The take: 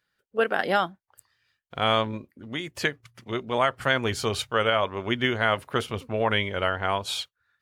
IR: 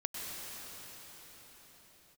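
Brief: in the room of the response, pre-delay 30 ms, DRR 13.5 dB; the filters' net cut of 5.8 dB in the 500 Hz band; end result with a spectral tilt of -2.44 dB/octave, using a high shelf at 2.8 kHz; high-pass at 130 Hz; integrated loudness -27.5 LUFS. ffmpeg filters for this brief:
-filter_complex "[0:a]highpass=130,equalizer=f=500:t=o:g=-7,highshelf=f=2800:g=-8.5,asplit=2[s0][s1];[1:a]atrim=start_sample=2205,adelay=30[s2];[s1][s2]afir=irnorm=-1:irlink=0,volume=0.15[s3];[s0][s3]amix=inputs=2:normalize=0,volume=1.33"

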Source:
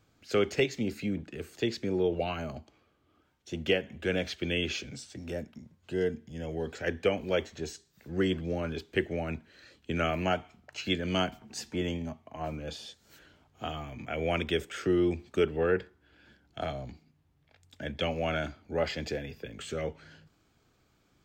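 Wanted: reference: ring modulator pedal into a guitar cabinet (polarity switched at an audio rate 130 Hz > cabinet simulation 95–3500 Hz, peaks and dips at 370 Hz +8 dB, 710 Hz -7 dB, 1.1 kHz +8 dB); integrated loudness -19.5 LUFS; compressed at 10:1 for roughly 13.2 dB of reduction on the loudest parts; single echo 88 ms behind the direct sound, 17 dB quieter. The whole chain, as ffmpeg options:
-af "acompressor=threshold=0.0178:ratio=10,aecho=1:1:88:0.141,aeval=exprs='val(0)*sgn(sin(2*PI*130*n/s))':c=same,highpass=95,equalizer=f=370:t=q:w=4:g=8,equalizer=f=710:t=q:w=4:g=-7,equalizer=f=1100:t=q:w=4:g=8,lowpass=f=3500:w=0.5412,lowpass=f=3500:w=1.3066,volume=10.6"

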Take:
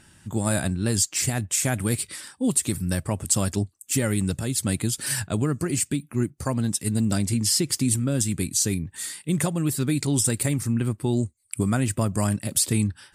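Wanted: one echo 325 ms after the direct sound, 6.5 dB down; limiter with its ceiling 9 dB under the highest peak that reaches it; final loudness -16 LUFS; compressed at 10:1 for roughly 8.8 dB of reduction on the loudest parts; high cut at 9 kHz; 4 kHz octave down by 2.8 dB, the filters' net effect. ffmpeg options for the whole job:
-af "lowpass=9000,equalizer=f=4000:t=o:g=-3.5,acompressor=threshold=0.0398:ratio=10,alimiter=limit=0.0668:level=0:latency=1,aecho=1:1:325:0.473,volume=7.08"

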